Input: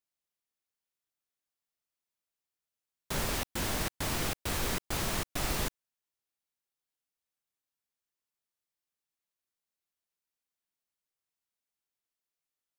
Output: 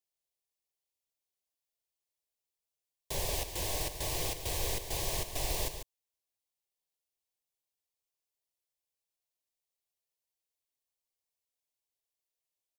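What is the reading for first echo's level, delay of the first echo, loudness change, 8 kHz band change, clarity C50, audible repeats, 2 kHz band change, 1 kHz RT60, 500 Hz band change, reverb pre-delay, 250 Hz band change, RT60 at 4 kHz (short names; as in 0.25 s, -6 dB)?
-9.0 dB, 0.144 s, -1.5 dB, 0.0 dB, none, 1, -6.0 dB, none, -0.5 dB, none, -8.5 dB, none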